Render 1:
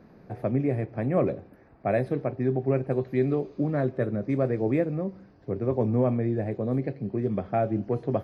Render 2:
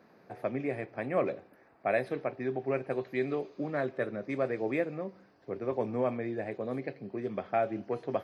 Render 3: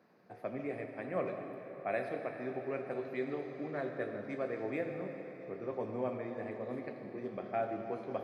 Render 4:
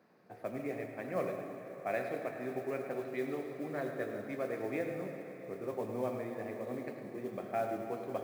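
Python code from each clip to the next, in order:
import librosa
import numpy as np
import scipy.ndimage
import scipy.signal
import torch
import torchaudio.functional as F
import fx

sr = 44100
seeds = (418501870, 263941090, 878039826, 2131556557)

y1 = fx.highpass(x, sr, hz=700.0, slope=6)
y1 = fx.dynamic_eq(y1, sr, hz=2700.0, q=0.76, threshold_db=-49.0, ratio=4.0, max_db=4)
y2 = scipy.signal.sosfilt(scipy.signal.butter(2, 84.0, 'highpass', fs=sr, output='sos'), y1)
y2 = fx.rev_plate(y2, sr, seeds[0], rt60_s=4.4, hf_ratio=0.75, predelay_ms=0, drr_db=3.5)
y2 = F.gain(torch.from_numpy(y2), -7.0).numpy()
y3 = y2 + 10.0 ** (-11.5 / 20.0) * np.pad(y2, (int(106 * sr / 1000.0), 0))[:len(y2)]
y3 = fx.mod_noise(y3, sr, seeds[1], snr_db=27)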